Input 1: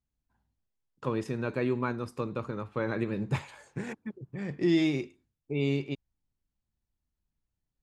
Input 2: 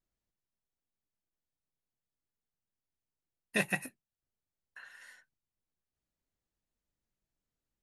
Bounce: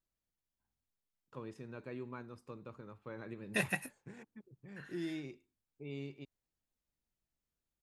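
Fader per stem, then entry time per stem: -15.5, -3.0 dB; 0.30, 0.00 s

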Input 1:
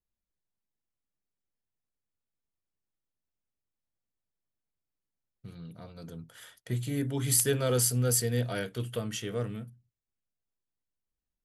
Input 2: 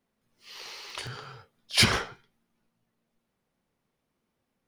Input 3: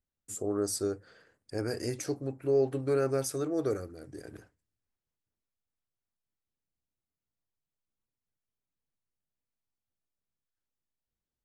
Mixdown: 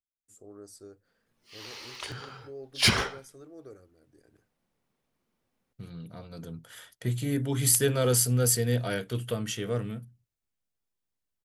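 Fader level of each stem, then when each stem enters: +2.5, -1.0, -17.0 dB; 0.35, 1.05, 0.00 s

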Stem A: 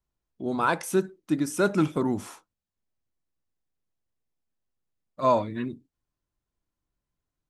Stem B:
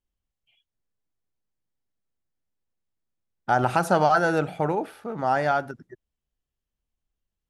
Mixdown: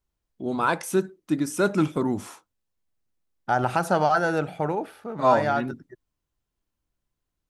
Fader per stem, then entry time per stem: +1.0, -1.5 dB; 0.00, 0.00 s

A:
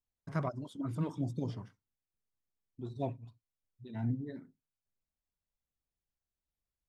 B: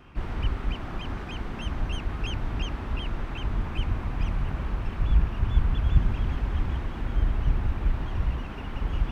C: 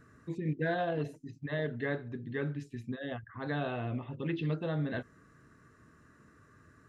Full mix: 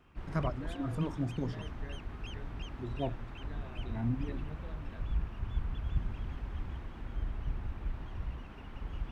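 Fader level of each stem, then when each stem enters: +1.0, -12.0, -17.0 dB; 0.00, 0.00, 0.00 s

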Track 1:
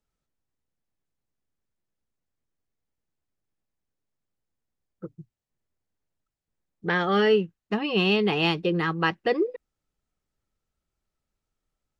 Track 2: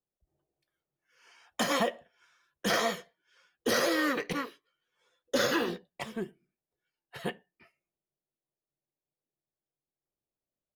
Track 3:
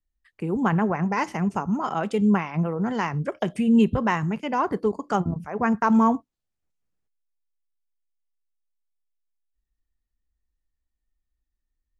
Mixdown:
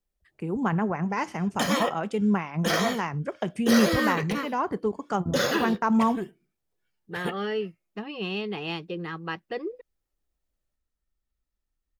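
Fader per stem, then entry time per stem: -9.0, +2.5, -3.5 dB; 0.25, 0.00, 0.00 s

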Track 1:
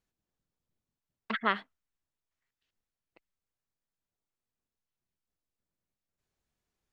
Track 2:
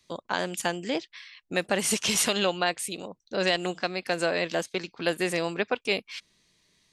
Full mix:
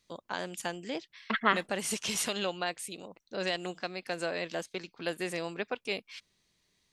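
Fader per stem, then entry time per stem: +2.5, -7.5 dB; 0.00, 0.00 s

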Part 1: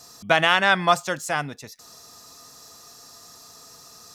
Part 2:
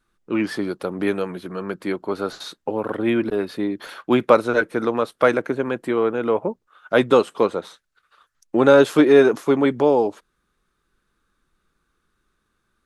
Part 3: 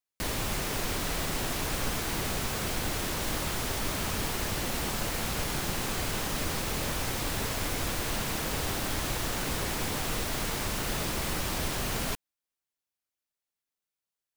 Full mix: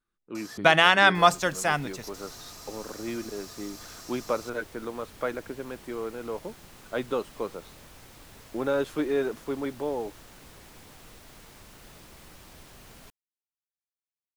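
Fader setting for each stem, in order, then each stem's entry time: 0.0, -14.0, -18.5 dB; 0.35, 0.00, 0.95 s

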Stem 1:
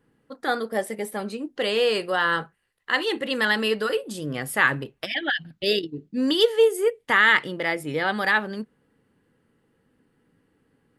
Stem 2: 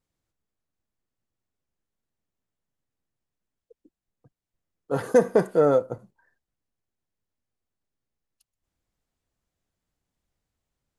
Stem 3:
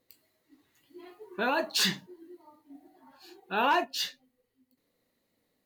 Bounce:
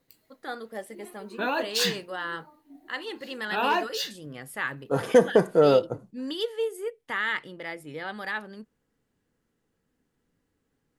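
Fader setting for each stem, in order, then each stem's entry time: -11.0, +0.5, +0.5 dB; 0.00, 0.00, 0.00 s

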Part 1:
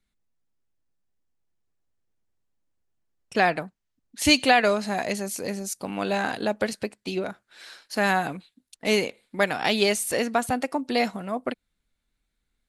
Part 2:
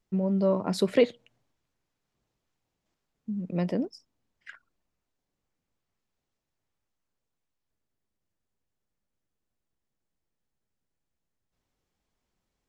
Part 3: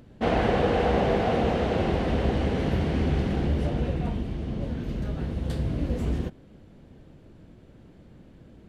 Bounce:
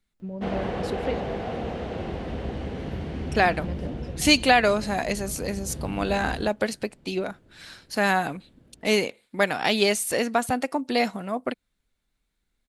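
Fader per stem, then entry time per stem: +0.5, -8.0, -7.0 dB; 0.00, 0.10, 0.20 s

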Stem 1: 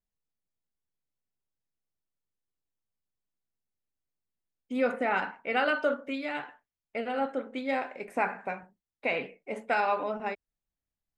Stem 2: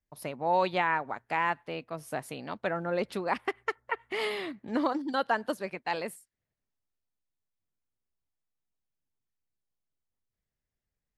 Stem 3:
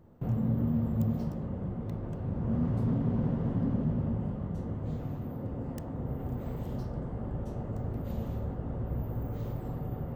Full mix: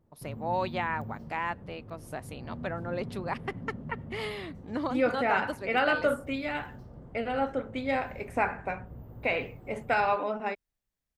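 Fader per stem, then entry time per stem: +1.0, -4.0, -11.5 dB; 0.20, 0.00, 0.00 s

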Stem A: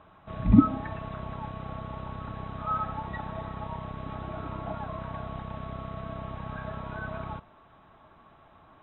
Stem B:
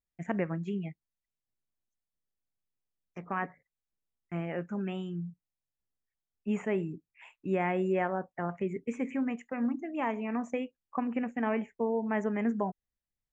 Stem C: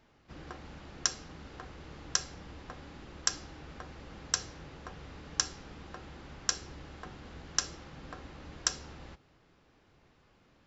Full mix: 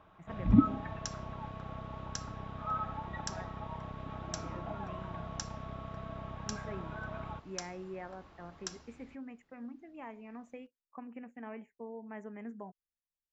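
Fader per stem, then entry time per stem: -5.5, -14.5, -12.0 dB; 0.00, 0.00, 0.00 s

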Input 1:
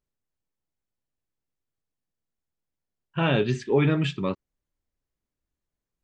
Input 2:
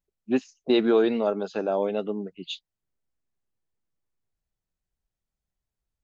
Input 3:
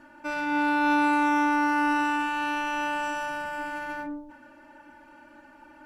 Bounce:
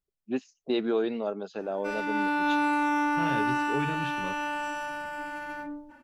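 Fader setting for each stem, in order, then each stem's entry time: -11.5, -6.5, -3.0 dB; 0.00, 0.00, 1.60 s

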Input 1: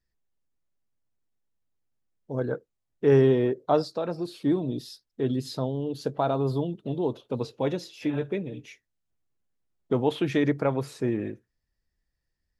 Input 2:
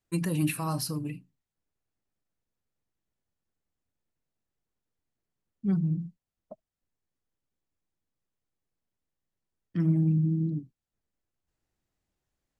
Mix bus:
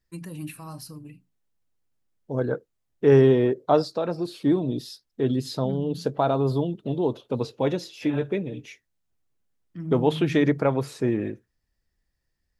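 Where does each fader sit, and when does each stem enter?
+3.0, -8.5 dB; 0.00, 0.00 s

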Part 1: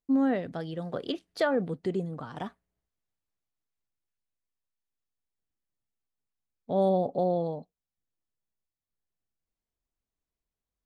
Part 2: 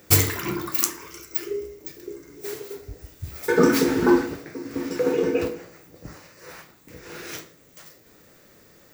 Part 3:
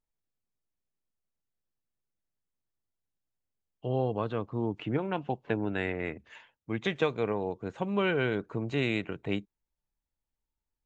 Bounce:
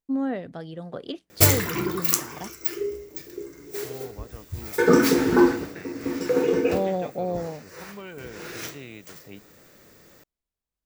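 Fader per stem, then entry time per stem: -1.5, +0.5, -12.5 dB; 0.00, 1.30, 0.00 s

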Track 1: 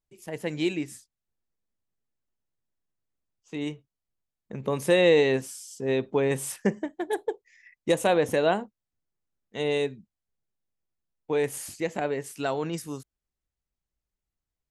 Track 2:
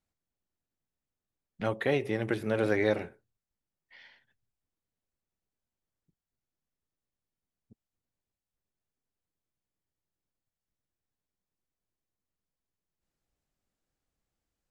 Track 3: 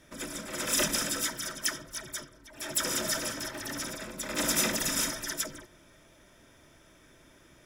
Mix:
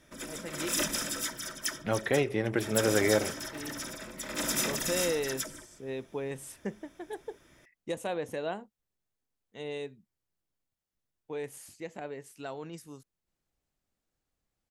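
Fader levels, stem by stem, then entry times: -11.5, +1.0, -3.0 dB; 0.00, 0.25, 0.00 s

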